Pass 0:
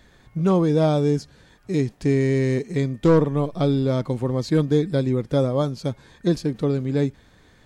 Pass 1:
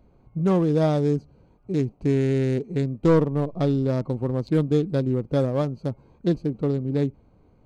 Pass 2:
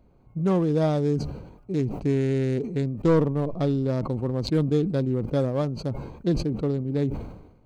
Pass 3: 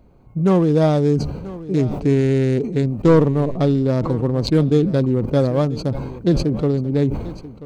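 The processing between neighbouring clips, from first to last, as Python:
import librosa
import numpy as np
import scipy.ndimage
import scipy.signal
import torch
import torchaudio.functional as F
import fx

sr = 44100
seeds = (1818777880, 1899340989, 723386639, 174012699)

y1 = fx.wiener(x, sr, points=25)
y1 = y1 * 10.0 ** (-1.5 / 20.0)
y2 = fx.sustainer(y1, sr, db_per_s=64.0)
y2 = y2 * 10.0 ** (-2.0 / 20.0)
y3 = y2 + 10.0 ** (-17.0 / 20.0) * np.pad(y2, (int(985 * sr / 1000.0), 0))[:len(y2)]
y3 = y3 * 10.0 ** (7.0 / 20.0)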